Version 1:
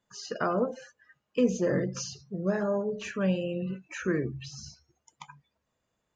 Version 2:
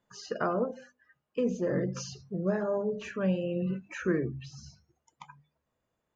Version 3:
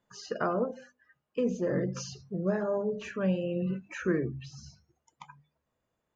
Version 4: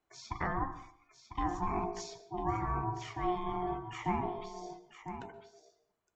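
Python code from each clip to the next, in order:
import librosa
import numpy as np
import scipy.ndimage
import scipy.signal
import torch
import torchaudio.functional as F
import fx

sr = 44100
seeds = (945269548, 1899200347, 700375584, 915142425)

y1 = fx.high_shelf(x, sr, hz=2700.0, db=-9.0)
y1 = fx.hum_notches(y1, sr, base_hz=50, count=5)
y1 = fx.rider(y1, sr, range_db=5, speed_s=0.5)
y2 = y1
y3 = y2 * np.sin(2.0 * np.pi * 540.0 * np.arange(len(y2)) / sr)
y3 = y3 + 10.0 ** (-10.0 / 20.0) * np.pad(y3, (int(999 * sr / 1000.0), 0))[:len(y3)]
y3 = fx.rev_plate(y3, sr, seeds[0], rt60_s=0.54, hf_ratio=0.55, predelay_ms=115, drr_db=14.5)
y3 = y3 * librosa.db_to_amplitude(-2.0)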